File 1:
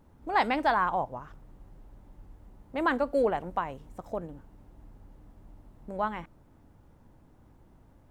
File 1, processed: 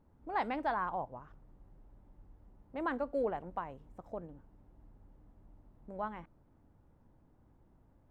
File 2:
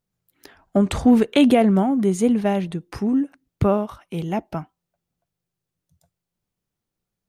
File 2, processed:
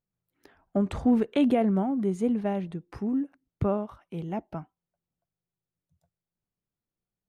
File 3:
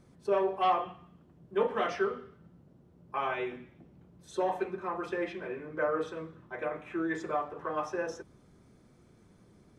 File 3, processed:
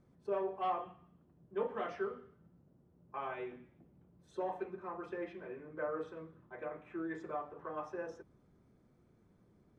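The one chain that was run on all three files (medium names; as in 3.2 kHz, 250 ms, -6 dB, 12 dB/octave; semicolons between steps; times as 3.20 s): treble shelf 2.9 kHz -11.5 dB; trim -7.5 dB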